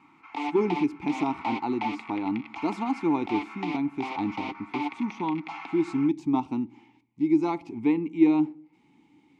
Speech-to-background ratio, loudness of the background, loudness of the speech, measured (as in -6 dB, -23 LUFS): 8.5 dB, -36.5 LUFS, -28.0 LUFS